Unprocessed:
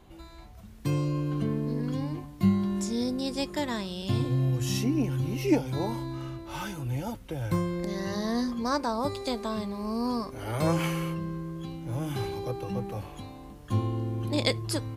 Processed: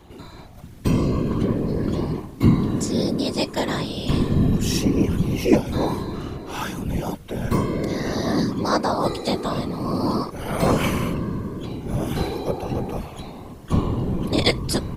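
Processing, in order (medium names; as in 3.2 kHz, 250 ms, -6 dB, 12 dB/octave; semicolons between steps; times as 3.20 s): whisper effect; trim +7 dB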